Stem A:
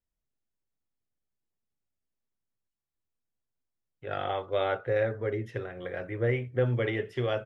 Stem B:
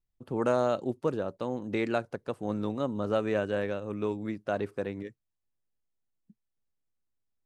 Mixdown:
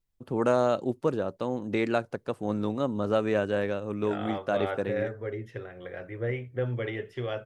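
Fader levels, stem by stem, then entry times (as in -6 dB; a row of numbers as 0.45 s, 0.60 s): -3.5 dB, +2.5 dB; 0.00 s, 0.00 s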